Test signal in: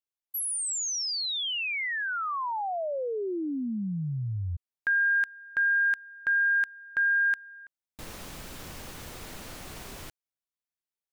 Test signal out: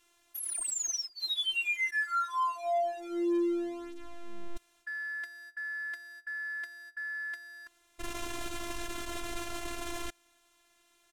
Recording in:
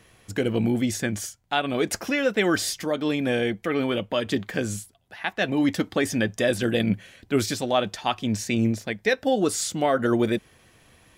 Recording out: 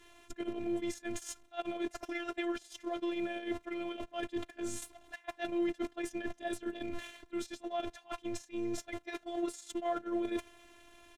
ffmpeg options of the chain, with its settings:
ffmpeg -i in.wav -filter_complex "[0:a]aeval=exprs='val(0)+0.5*0.0178*sgn(val(0))':channel_layout=same,adynamicequalizer=threshold=0.00794:dfrequency=640:dqfactor=4.3:tfrequency=640:tqfactor=4.3:attack=5:release=100:ratio=0.375:range=2:mode=boostabove:tftype=bell,asplit=2[link_01][link_02];[link_02]alimiter=limit=-17.5dB:level=0:latency=1:release=28,volume=0dB[link_03];[link_01][link_03]amix=inputs=2:normalize=0,bandreject=frequency=1900:width=23,areverse,acompressor=threshold=-25dB:ratio=12:attack=0.17:release=192:knee=1:detection=peak,areverse,equalizer=frequency=4800:width_type=o:width=0.26:gain=-7.5,asplit=2[link_04][link_05];[link_05]adelay=270,highpass=300,lowpass=3400,asoftclip=type=hard:threshold=-31dB,volume=-21dB[link_06];[link_04][link_06]amix=inputs=2:normalize=0,agate=range=-20dB:threshold=-33dB:ratio=16:release=47:detection=peak,afftfilt=real='hypot(re,im)*cos(PI*b)':imag='0':win_size=512:overlap=0.75,adynamicsmooth=sensitivity=6.5:basefreq=8000" out.wav

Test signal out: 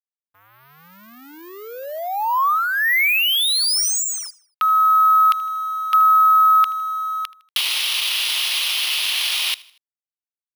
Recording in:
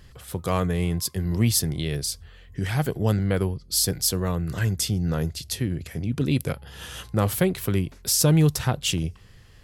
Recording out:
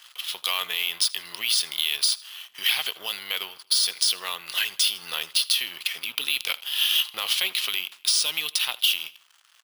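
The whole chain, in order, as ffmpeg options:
ffmpeg -i in.wav -af "lowpass=frequency=5500:width=0.5412,lowpass=frequency=5500:width=1.3066,highshelf=frequency=2100:width_type=q:width=3:gain=12.5,dynaudnorm=framelen=390:gausssize=5:maxgain=12dB,alimiter=limit=-10dB:level=0:latency=1:release=13,acompressor=threshold=-20dB:ratio=6,acrusher=samples=3:mix=1:aa=0.000001,aeval=exprs='sgn(val(0))*max(abs(val(0))-0.00562,0)':channel_layout=same,highpass=frequency=1200:width_type=q:width=2.2,aecho=1:1:79|158|237:0.0794|0.0373|0.0175,volume=2dB" out.wav

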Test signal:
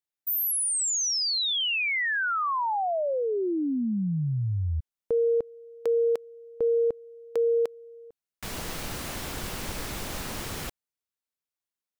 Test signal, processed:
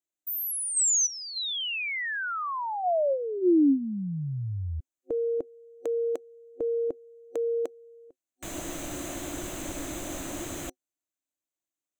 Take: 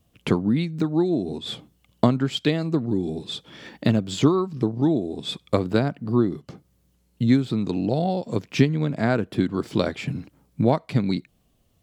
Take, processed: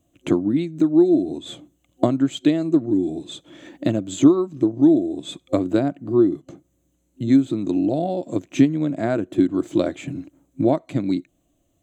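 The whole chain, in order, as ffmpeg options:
ffmpeg -i in.wav -af "superequalizer=6b=3.98:8b=2.24:14b=0.447:15b=2.51,volume=-4.5dB" out.wav

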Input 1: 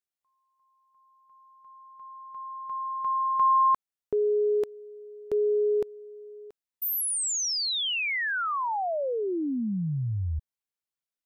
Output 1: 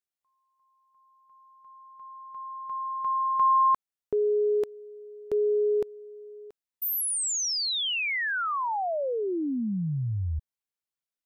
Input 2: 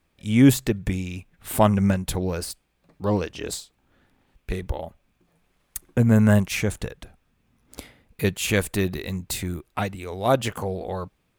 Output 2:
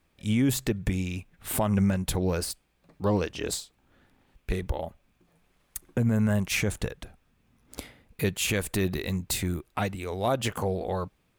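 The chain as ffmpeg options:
ffmpeg -i in.wav -af "alimiter=limit=-15.5dB:level=0:latency=1:release=115" out.wav

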